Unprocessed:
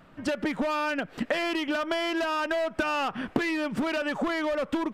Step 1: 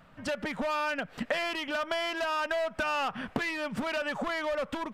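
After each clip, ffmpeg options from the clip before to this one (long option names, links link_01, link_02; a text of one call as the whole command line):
ffmpeg -i in.wav -af "equalizer=frequency=330:width=2.3:gain=-10,volume=-1.5dB" out.wav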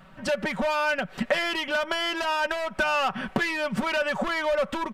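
ffmpeg -i in.wav -af "aecho=1:1:5.3:0.54,volume=4.5dB" out.wav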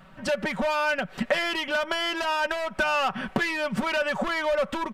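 ffmpeg -i in.wav -af anull out.wav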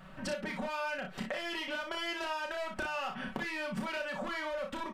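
ffmpeg -i in.wav -af "acompressor=threshold=-35dB:ratio=4,aecho=1:1:32|59:0.562|0.422,volume=-2.5dB" out.wav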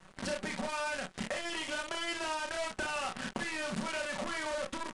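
ffmpeg -i in.wav -af "acrusher=bits=7:dc=4:mix=0:aa=0.000001,aresample=22050,aresample=44100" out.wav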